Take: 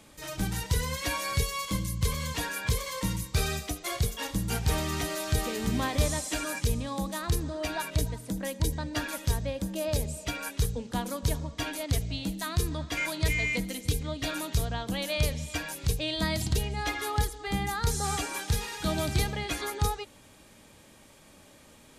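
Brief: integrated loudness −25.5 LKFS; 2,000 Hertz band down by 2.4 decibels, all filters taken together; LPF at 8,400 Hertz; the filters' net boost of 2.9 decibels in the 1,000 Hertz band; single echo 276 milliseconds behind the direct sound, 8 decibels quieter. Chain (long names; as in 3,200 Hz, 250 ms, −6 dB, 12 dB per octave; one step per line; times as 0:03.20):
low-pass filter 8,400 Hz
parametric band 1,000 Hz +4.5 dB
parametric band 2,000 Hz −4 dB
single-tap delay 276 ms −8 dB
level +5 dB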